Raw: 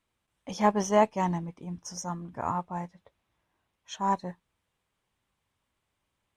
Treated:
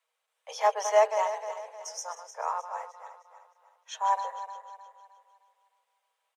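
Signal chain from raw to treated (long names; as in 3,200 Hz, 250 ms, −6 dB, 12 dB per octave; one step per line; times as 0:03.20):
feedback delay that plays each chunk backwards 154 ms, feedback 63%, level −9.5 dB
Butterworth high-pass 450 Hz 96 dB per octave
comb filter 6.3 ms, depth 35%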